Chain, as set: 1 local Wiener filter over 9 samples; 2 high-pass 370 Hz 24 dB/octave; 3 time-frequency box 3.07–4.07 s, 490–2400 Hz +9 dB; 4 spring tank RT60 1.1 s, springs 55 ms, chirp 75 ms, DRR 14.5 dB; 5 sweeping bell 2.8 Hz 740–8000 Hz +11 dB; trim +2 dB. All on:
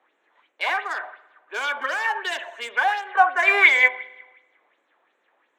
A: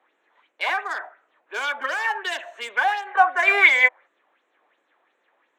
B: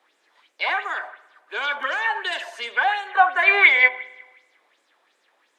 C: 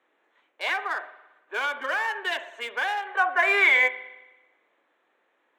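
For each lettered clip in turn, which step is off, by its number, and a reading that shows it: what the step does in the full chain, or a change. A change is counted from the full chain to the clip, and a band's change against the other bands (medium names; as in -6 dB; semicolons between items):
4, momentary loudness spread change -2 LU; 1, 4 kHz band +1.5 dB; 5, momentary loudness spread change -4 LU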